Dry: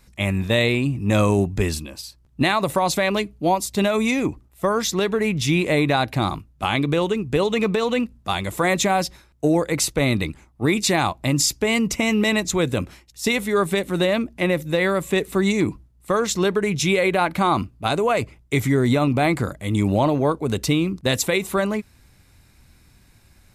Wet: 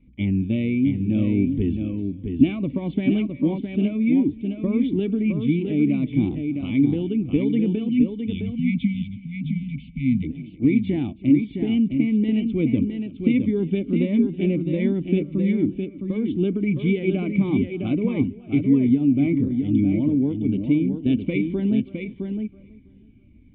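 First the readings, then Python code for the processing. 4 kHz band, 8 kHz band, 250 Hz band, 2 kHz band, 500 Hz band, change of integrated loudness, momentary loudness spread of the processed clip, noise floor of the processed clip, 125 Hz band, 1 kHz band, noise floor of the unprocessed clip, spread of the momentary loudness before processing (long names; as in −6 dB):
below −15 dB, below −40 dB, +4.0 dB, −13.0 dB, −7.5 dB, −1.0 dB, 7 LU, −47 dBFS, −1.0 dB, below −20 dB, −55 dBFS, 6 LU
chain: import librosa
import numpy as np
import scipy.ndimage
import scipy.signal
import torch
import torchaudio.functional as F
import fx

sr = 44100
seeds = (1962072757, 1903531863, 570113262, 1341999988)

p1 = fx.formant_cascade(x, sr, vowel='i')
p2 = fx.high_shelf(p1, sr, hz=2500.0, db=-10.0)
p3 = fx.rider(p2, sr, range_db=3, speed_s=0.5)
p4 = fx.echo_feedback(p3, sr, ms=325, feedback_pct=40, wet_db=-20.0)
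p5 = fx.spec_erase(p4, sr, start_s=7.9, length_s=2.33, low_hz=270.0, high_hz=2000.0)
p6 = p5 + fx.echo_single(p5, sr, ms=662, db=-6.0, dry=0)
p7 = fx.notch_cascade(p6, sr, direction='falling', hz=1.5)
y = p7 * 10.0 ** (8.5 / 20.0)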